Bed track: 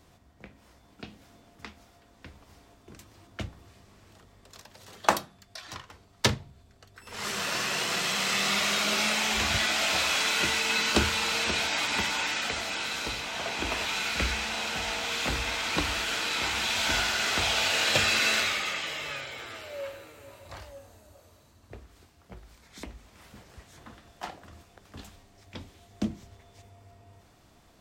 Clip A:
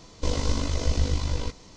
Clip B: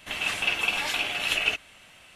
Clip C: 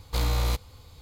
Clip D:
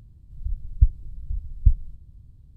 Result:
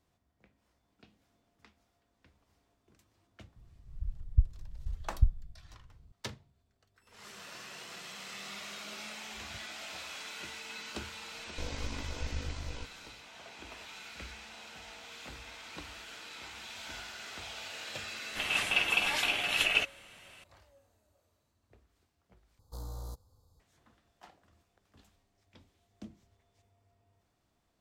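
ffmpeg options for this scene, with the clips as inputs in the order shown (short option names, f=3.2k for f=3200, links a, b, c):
-filter_complex "[0:a]volume=-17.5dB[a];[3:a]asuperstop=centerf=2400:order=4:qfactor=0.62[b];[a]asplit=2[c][d];[c]atrim=end=22.594[e];[b]atrim=end=1.01,asetpts=PTS-STARTPTS,volume=-16.5dB[f];[d]atrim=start=23.596[g];[4:a]atrim=end=2.56,asetpts=PTS-STARTPTS,volume=-8dB,afade=t=in:d=0.004:c=hsin,afade=t=out:st=2.556:d=0.004:c=hsin,adelay=3560[h];[1:a]atrim=end=1.76,asetpts=PTS-STARTPTS,volume=-13.5dB,afade=t=in:d=0.004:c=hsin,afade=t=out:st=1.756:d=0.004:c=hsin,adelay=11350[i];[2:a]atrim=end=2.15,asetpts=PTS-STARTPTS,volume=-2.5dB,afade=t=in:d=0.004:c=hsin,afade=t=out:st=2.146:d=0.004:c=hsin,adelay=18290[j];[e][f]acrossfade=d=0.004:c1=hsin:c2=hsin[k];[k][g]acrossfade=d=0.004:c1=hsin:c2=hsin[l];[l][h][i][j]amix=inputs=4:normalize=0"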